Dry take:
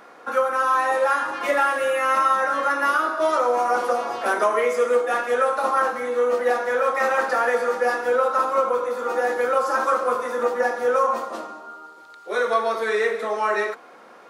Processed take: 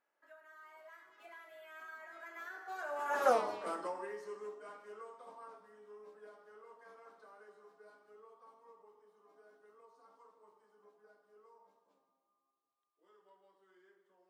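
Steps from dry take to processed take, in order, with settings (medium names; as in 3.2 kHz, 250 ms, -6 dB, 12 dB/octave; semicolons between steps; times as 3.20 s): Doppler pass-by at 3.32 s, 56 m/s, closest 4.3 m; trim -4.5 dB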